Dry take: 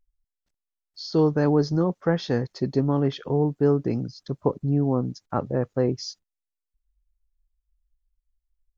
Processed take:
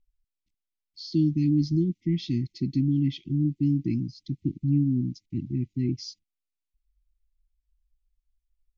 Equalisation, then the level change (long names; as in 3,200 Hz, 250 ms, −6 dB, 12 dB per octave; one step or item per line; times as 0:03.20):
linear-phase brick-wall band-stop 360–1,900 Hz
Butterworth band-reject 1,500 Hz, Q 1.6
high-frequency loss of the air 93 metres
0.0 dB